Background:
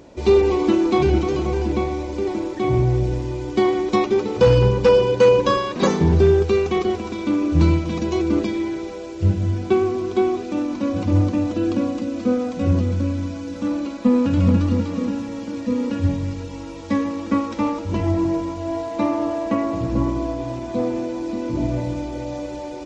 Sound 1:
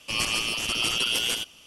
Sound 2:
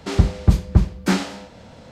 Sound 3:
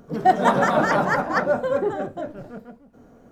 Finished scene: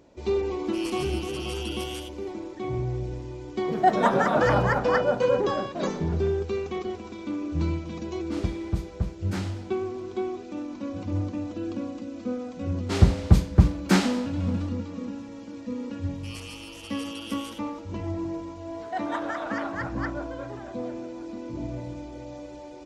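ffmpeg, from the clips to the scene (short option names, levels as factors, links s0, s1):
-filter_complex "[1:a]asplit=2[s0][s1];[3:a]asplit=2[s2][s3];[2:a]asplit=2[s4][s5];[0:a]volume=0.282[s6];[s2]highshelf=f=6900:g=-5.5[s7];[s5]highpass=46[s8];[s3]bandpass=f=2400:t=q:w=0.62:csg=0[s9];[s0]atrim=end=1.66,asetpts=PTS-STARTPTS,volume=0.224,afade=t=in:d=0.004:c=hsin,afade=t=out:st=1.656:d=0.004:c=hsin,adelay=650[s10];[s7]atrim=end=3.31,asetpts=PTS-STARTPTS,volume=0.668,afade=t=in:d=0.004:c=hsin,afade=t=out:st=3.306:d=0.004:c=hsin,adelay=3580[s11];[s4]atrim=end=1.91,asetpts=PTS-STARTPTS,volume=0.211,afade=t=in:d=0.004:c=hsin,afade=t=out:st=1.906:d=0.004:c=hsin,adelay=8250[s12];[s8]atrim=end=1.91,asetpts=PTS-STARTPTS,volume=0.891,afade=t=in:d=0.1,afade=t=out:st=1.81:d=0.1,adelay=12830[s13];[s1]atrim=end=1.66,asetpts=PTS-STARTPTS,volume=0.158,afade=t=in:d=0.004:c=hsin,afade=t=out:st=1.656:d=0.004:c=hsin,adelay=16150[s14];[s9]atrim=end=3.31,asetpts=PTS-STARTPTS,volume=0.335,afade=t=in:d=0.004:c=hsin,afade=t=out:st=3.306:d=0.004:c=hsin,adelay=18670[s15];[s6][s10][s11][s12][s13][s14][s15]amix=inputs=7:normalize=0"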